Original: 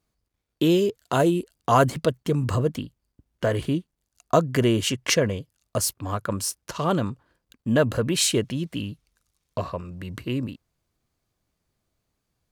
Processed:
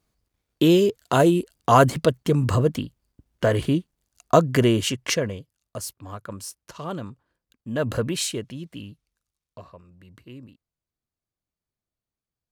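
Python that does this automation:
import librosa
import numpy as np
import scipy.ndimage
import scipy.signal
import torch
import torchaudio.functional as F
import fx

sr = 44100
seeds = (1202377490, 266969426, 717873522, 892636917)

y = fx.gain(x, sr, db=fx.line((4.55, 3.0), (5.77, -8.5), (7.73, -8.5), (7.93, 1.0), (8.36, -7.5), (8.88, -7.5), (9.65, -15.0)))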